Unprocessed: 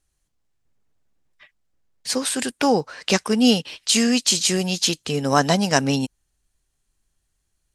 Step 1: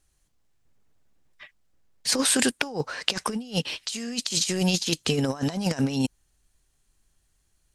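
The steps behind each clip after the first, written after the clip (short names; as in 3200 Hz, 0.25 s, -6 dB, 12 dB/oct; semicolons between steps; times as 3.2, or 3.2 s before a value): negative-ratio compressor -24 dBFS, ratio -0.5; gain -1 dB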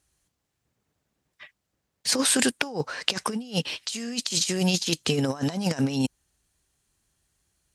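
HPF 65 Hz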